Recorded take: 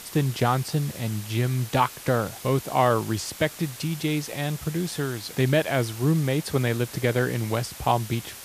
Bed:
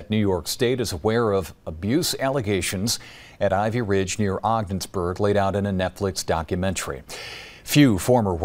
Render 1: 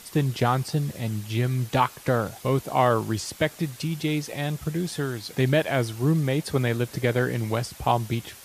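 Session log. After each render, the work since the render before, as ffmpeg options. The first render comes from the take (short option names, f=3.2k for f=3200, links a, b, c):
-af "afftdn=nr=6:nf=-42"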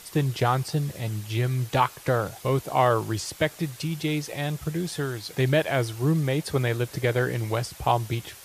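-af "equalizer=f=230:t=o:w=0.31:g=-10"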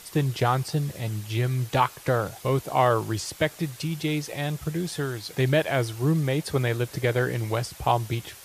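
-af anull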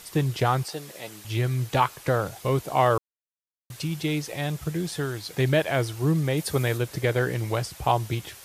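-filter_complex "[0:a]asettb=1/sr,asplit=3[a][b][c];[a]atrim=end=0.654[d];[b]atrim=start=0.65:end=1.25,asetpts=PTS-STARTPTS,afade=t=in:d=0.004:c=qsin,afade=t=out:st=0.596:d=0.004:c=qsin,highpass=390[e];[c]atrim=start=1.246[f];[d][e]acrossfade=d=0.004:c1=hsin:c2=qsin[g];[g][f]acrossfade=d=0.004:c1=qsin:c2=hsin,asettb=1/sr,asplit=3[h][i][j];[h]atrim=end=6.374[k];[i]atrim=start=6.37:end=6.78,asetpts=PTS-STARTPTS,afade=t=in:d=0.004:c=qsin,afade=t=out:st=0.406:d=0.004:c=qsin,highshelf=f=6.9k:g=8[l];[j]atrim=start=6.776[m];[k][l]acrossfade=d=0.004:c1=hsin:c2=qsin[n];[n][m]acrossfade=d=0.004:c1=qsin:c2=hsin,asplit=3[o][p][q];[o]atrim=end=2.98,asetpts=PTS-STARTPTS,afade=t=out:st=2.976:d=0.004:c=hsin[r];[p]atrim=start=2.98:end=3.7,asetpts=PTS-STARTPTS,volume=0[s];[q]atrim=start=3.7,asetpts=PTS-STARTPTS,afade=t=in:d=0.004:c=hsin[t];[r][s][t]concat=n=3:v=0:a=1"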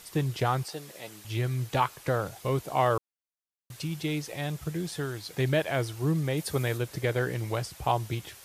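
-af "volume=-4dB"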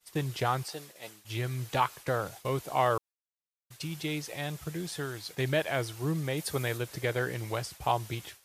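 -af "agate=range=-33dB:threshold=-40dB:ratio=3:detection=peak,lowshelf=f=480:g=-5"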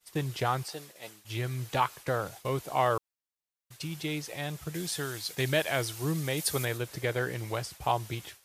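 -filter_complex "[0:a]asettb=1/sr,asplit=3[a][b][c];[a]atrim=end=4.744[d];[b]atrim=start=4.74:end=6.65,asetpts=PTS-STARTPTS,afade=t=in:d=0.004:c=qsin,afade=t=out:st=1.906:d=0.004:c=qsin,highshelf=f=2.8k:g=7.5[e];[c]atrim=start=6.646[f];[d][e]acrossfade=d=0.004:c1=hsin:c2=qsin[g];[g][f]acrossfade=d=0.004:c1=qsin:c2=hsin"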